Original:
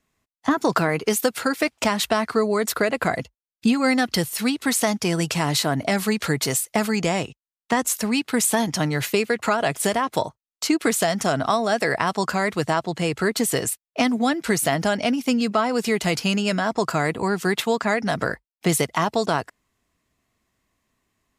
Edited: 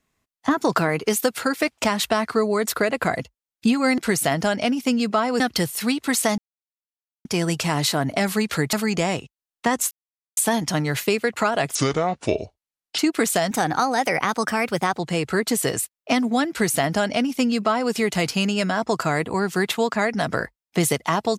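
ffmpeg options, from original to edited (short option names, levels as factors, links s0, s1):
-filter_complex "[0:a]asplit=11[s0][s1][s2][s3][s4][s5][s6][s7][s8][s9][s10];[s0]atrim=end=3.982[s11];[s1]atrim=start=14.388:end=15.812[s12];[s2]atrim=start=3.978:end=4.96,asetpts=PTS-STARTPTS,afade=t=out:st=0.978:d=0.004:c=hsin,apad=pad_dur=0.87[s13];[s3]atrim=start=4.96:end=6.442,asetpts=PTS-STARTPTS,afade=t=in:d=0.004:c=hsin[s14];[s4]atrim=start=6.788:end=7.97,asetpts=PTS-STARTPTS,afade=t=out:st=1.178:d=0.004:c=hsin[s15];[s5]atrim=start=7.97:end=8.43,asetpts=PTS-STARTPTS,volume=0[s16];[s6]atrim=start=8.43:end=9.814,asetpts=PTS-STARTPTS,afade=t=in:d=0.004:c=hsin[s17];[s7]atrim=start=9.81:end=10.65,asetpts=PTS-STARTPTS,asetrate=29988,aresample=44100,atrim=end_sample=54476,asetpts=PTS-STARTPTS[s18];[s8]atrim=start=10.646:end=11.174[s19];[s9]atrim=start=11.17:end=12.88,asetpts=PTS-STARTPTS,asetrate=50715,aresample=44100[s20];[s10]atrim=start=12.876[s21];[s11][s12]acrossfade=d=0.004:c1=hsin:c2=hsin[s22];[s13][s14]concat=n=2:v=0:a=1[s23];[s22][s23]acrossfade=d=0.004:c1=hsin:c2=hsin[s24];[s15][s16][s17]concat=n=3:v=0:a=1[s25];[s24][s25]acrossfade=d=0.004:c1=hsin:c2=hsin[s26];[s26][s18]acrossfade=d=0.004:c1=hsin:c2=hsin[s27];[s27][s19]acrossfade=d=0.004:c1=hsin:c2=hsin[s28];[s28][s20]acrossfade=d=0.004:c1=hsin:c2=hsin[s29];[s29][s21]acrossfade=d=0.004:c1=hsin:c2=hsin"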